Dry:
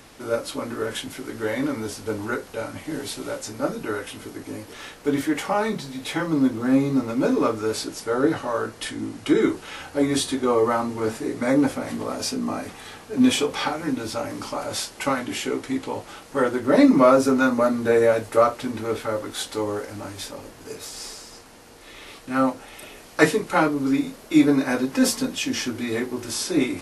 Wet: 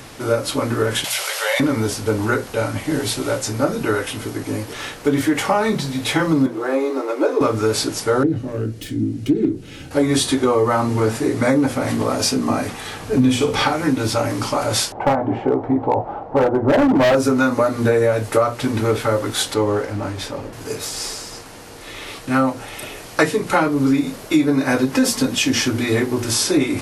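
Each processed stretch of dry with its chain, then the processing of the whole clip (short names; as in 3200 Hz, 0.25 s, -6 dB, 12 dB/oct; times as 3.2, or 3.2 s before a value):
1.04–1.6 elliptic high-pass 560 Hz, stop band 50 dB + resonant high shelf 2100 Hz +6 dB, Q 1.5 + fast leveller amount 50%
6.46–7.41 steep high-pass 310 Hz 72 dB/oct + high shelf 2200 Hz -9 dB
8.23–9.91 self-modulated delay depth 0.18 ms + EQ curve 300 Hz 0 dB, 1000 Hz -27 dB, 2500 Hz -19 dB + mismatched tape noise reduction encoder only
13–13.63 low shelf 240 Hz +10.5 dB + notches 50/100/150/200/250/300/350/400 Hz + flutter echo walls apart 9.3 m, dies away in 0.3 s
14.92–17.15 synth low-pass 780 Hz, resonance Q 3.4 + overloaded stage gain 15 dB
19.54–20.53 high shelf 5600 Hz -11.5 dB + mismatched tape noise reduction decoder only
whole clip: bell 120 Hz +13.5 dB 0.27 oct; notches 60/120/180/240 Hz; compressor 6:1, threshold -22 dBFS; gain +9 dB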